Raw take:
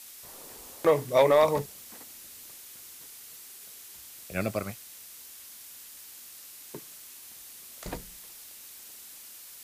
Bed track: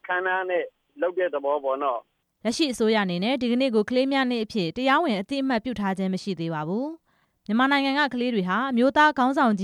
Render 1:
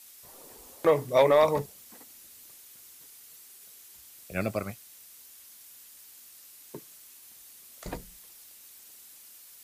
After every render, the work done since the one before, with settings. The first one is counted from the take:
broadband denoise 6 dB, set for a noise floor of −48 dBFS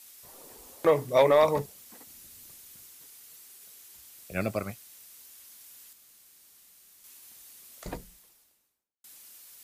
0:02.07–0:02.86: bass and treble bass +9 dB, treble +1 dB
0:05.93–0:07.04: fill with room tone
0:07.74–0:09.04: fade out and dull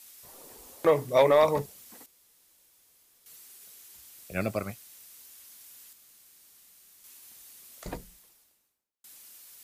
0:02.06–0:03.26: fill with room tone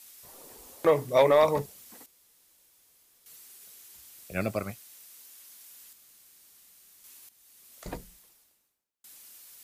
0:04.80–0:05.82: high-pass filter 180 Hz 6 dB per octave
0:07.29–0:07.96: fade in, from −13.5 dB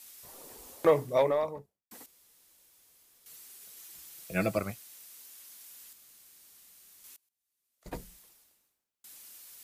0:00.69–0:01.91: fade out and dull
0:03.76–0:04.58: comb filter 6.1 ms
0:07.16–0:07.94: expander for the loud parts 2.5 to 1, over −51 dBFS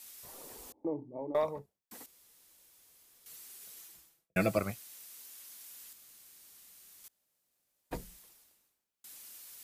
0:00.72–0:01.35: formant resonators in series u
0:03.72–0:04.36: fade out and dull
0:07.08–0:07.91: fill with room tone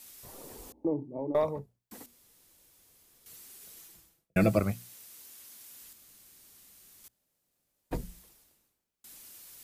low-shelf EQ 400 Hz +10 dB
mains-hum notches 60/120/180/240 Hz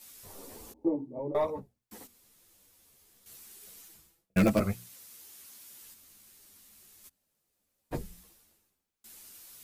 in parallel at −8 dB: wrap-around overflow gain 14 dB
on the sum: string-ensemble chorus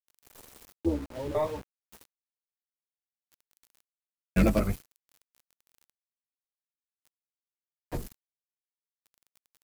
sub-octave generator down 2 octaves, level −2 dB
centre clipping without the shift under −41 dBFS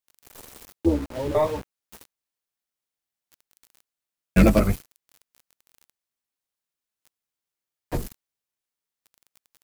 level +7 dB

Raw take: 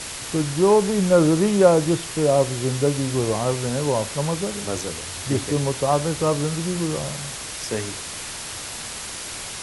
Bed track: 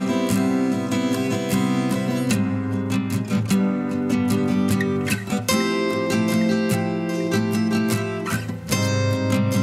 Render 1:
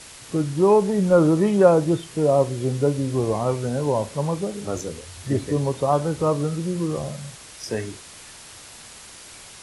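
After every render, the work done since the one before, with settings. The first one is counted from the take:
noise reduction from a noise print 10 dB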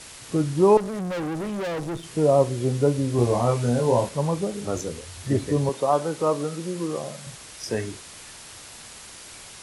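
0:00.77–0:02.04: tube saturation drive 27 dB, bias 0.75
0:03.16–0:04.09: double-tracking delay 25 ms −2.5 dB
0:05.69–0:07.27: Bessel high-pass filter 280 Hz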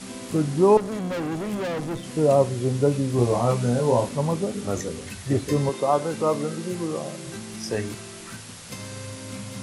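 mix in bed track −16.5 dB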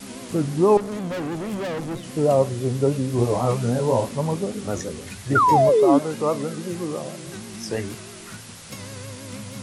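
0:05.35–0:05.99: sound drawn into the spectrogram fall 260–1,400 Hz −16 dBFS
pitch vibrato 6.2 Hz 90 cents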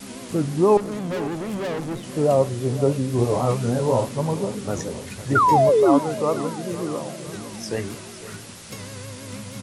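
repeating echo 504 ms, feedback 51%, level −15.5 dB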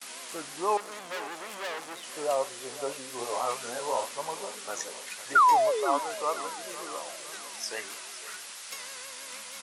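noise gate with hold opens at −34 dBFS
high-pass filter 970 Hz 12 dB per octave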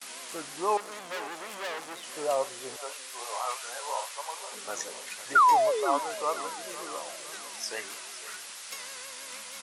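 0:02.76–0:04.52: high-pass filter 800 Hz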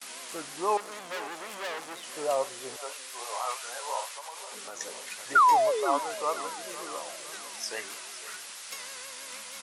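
0:04.11–0:04.81: downward compressor, threshold −37 dBFS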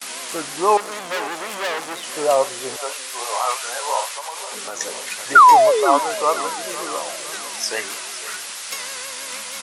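level +11 dB

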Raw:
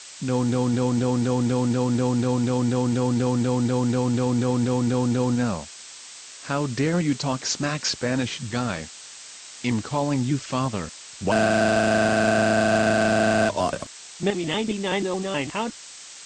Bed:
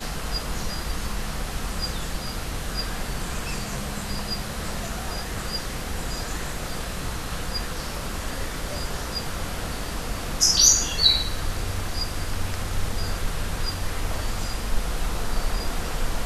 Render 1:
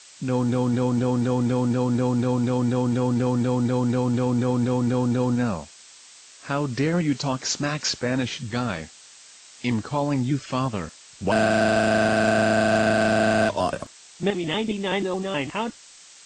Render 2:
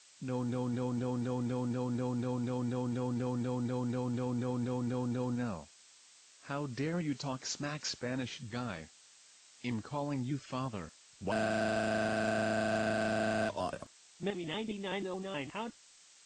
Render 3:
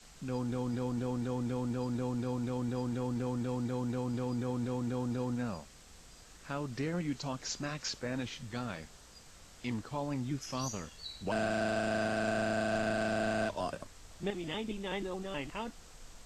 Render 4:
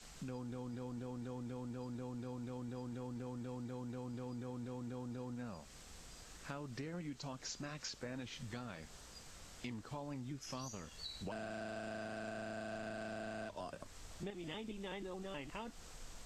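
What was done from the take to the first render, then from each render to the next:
noise reduction from a noise print 6 dB
level −12.5 dB
mix in bed −27.5 dB
downward compressor 5 to 1, threshold −43 dBFS, peak gain reduction 13.5 dB

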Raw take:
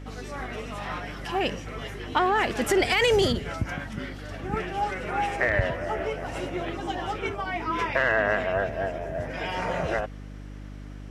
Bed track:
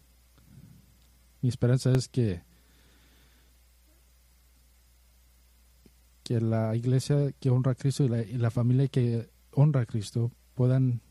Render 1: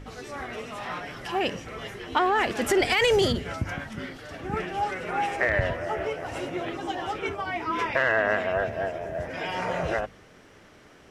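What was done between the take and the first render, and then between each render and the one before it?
hum removal 50 Hz, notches 6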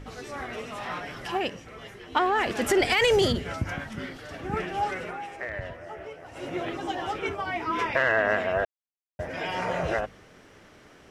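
0:01.37–0:02.46: expander for the loud parts, over −32 dBFS
0:05.01–0:06.52: duck −10.5 dB, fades 0.17 s
0:08.65–0:09.19: silence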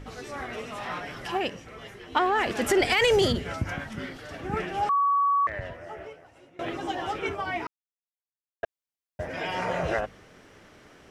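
0:04.89–0:05.47: beep over 1,130 Hz −19.5 dBFS
0:06.02–0:06.59: fade out quadratic, to −24 dB
0:07.67–0:08.63: silence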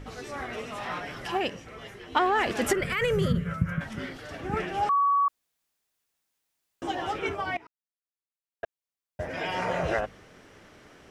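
0:02.73–0:03.81: drawn EQ curve 110 Hz 0 dB, 170 Hz +13 dB, 280 Hz −12 dB, 550 Hz −2 dB, 780 Hz −20 dB, 1,200 Hz +2 dB, 4,800 Hz −16 dB, 7,200 Hz −11 dB, 14,000 Hz −2 dB
0:05.28–0:06.82: fill with room tone
0:07.57–0:09.22: fade in, from −19.5 dB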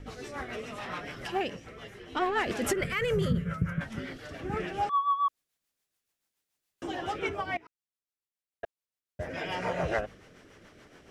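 soft clipping −15.5 dBFS, distortion −22 dB
rotating-speaker cabinet horn 7 Hz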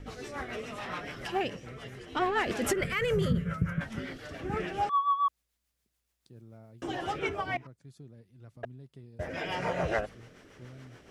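mix in bed track −24.5 dB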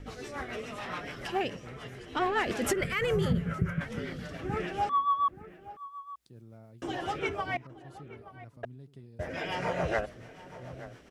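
slap from a distant wall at 150 metres, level −15 dB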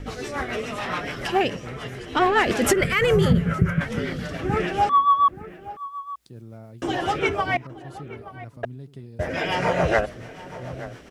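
level +9.5 dB

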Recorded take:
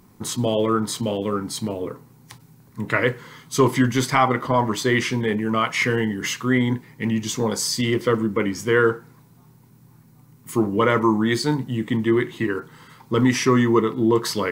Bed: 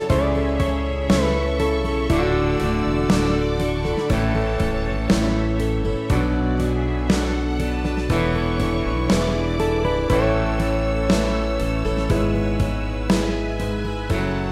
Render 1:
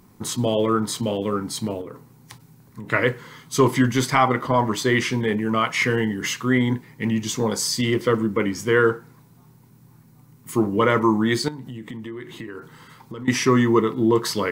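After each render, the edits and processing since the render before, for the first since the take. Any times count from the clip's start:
0:01.81–0:02.92: downward compressor, threshold −31 dBFS
0:11.48–0:13.28: downward compressor 8 to 1, threshold −31 dBFS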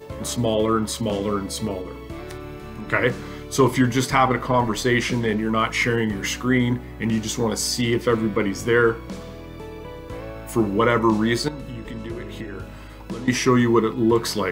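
mix in bed −16 dB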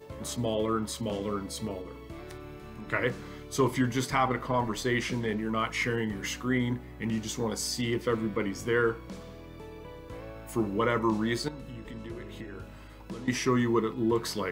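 level −8.5 dB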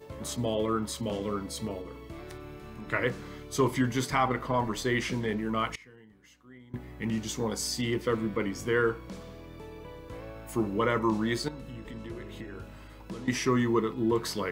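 0:05.75–0:06.74: gate with flip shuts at −30 dBFS, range −24 dB

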